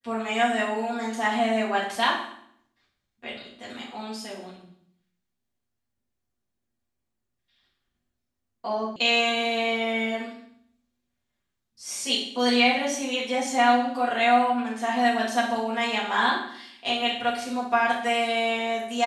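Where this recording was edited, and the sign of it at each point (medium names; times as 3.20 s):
8.96 s: sound stops dead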